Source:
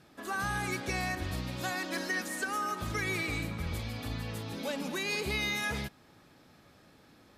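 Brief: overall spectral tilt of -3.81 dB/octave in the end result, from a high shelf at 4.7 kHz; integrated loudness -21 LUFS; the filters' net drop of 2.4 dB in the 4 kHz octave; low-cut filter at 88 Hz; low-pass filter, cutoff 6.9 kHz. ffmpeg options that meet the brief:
-af "highpass=88,lowpass=6900,equalizer=f=4000:t=o:g=-6.5,highshelf=f=4700:g=8.5,volume=4.73"

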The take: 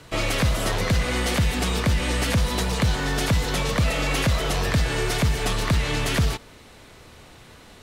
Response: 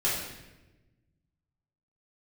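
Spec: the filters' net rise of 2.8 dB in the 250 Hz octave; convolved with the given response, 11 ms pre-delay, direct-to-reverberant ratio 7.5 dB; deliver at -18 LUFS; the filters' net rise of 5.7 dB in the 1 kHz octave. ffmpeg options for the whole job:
-filter_complex "[0:a]equalizer=f=250:t=o:g=3.5,equalizer=f=1000:t=o:g=7,asplit=2[s0][s1];[1:a]atrim=start_sample=2205,adelay=11[s2];[s1][s2]afir=irnorm=-1:irlink=0,volume=0.133[s3];[s0][s3]amix=inputs=2:normalize=0,volume=1.41"

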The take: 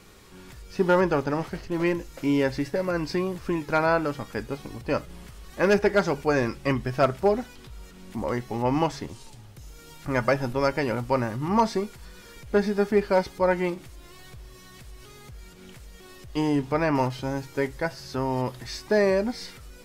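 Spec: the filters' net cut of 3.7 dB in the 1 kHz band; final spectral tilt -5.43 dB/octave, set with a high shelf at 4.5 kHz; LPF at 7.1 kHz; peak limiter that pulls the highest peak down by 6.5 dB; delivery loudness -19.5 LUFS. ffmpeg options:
-af "lowpass=7100,equalizer=f=1000:t=o:g=-5,highshelf=f=4500:g=4.5,volume=3.16,alimiter=limit=0.447:level=0:latency=1"

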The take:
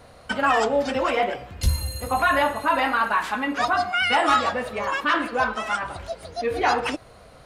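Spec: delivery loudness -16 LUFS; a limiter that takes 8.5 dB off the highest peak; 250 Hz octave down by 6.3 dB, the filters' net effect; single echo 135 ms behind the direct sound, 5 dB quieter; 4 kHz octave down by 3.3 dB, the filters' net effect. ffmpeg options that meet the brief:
-af "equalizer=f=250:t=o:g=-7.5,equalizer=f=4000:t=o:g=-5,alimiter=limit=0.112:level=0:latency=1,aecho=1:1:135:0.562,volume=3.55"

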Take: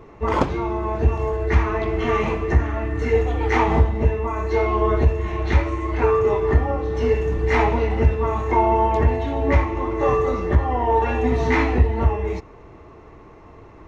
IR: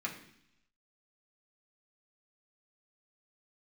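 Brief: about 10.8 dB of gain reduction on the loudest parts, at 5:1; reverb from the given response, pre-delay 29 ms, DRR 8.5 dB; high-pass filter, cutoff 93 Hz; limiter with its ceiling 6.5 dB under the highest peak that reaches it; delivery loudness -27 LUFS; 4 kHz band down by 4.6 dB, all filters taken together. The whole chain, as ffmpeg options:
-filter_complex "[0:a]highpass=93,equalizer=f=4000:t=o:g=-6.5,acompressor=threshold=0.0447:ratio=5,alimiter=limit=0.075:level=0:latency=1,asplit=2[s0][s1];[1:a]atrim=start_sample=2205,adelay=29[s2];[s1][s2]afir=irnorm=-1:irlink=0,volume=0.266[s3];[s0][s3]amix=inputs=2:normalize=0,volume=1.68"

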